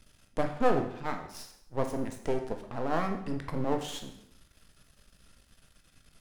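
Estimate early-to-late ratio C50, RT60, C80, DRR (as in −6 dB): 8.5 dB, 0.75 s, 11.5 dB, 4.5 dB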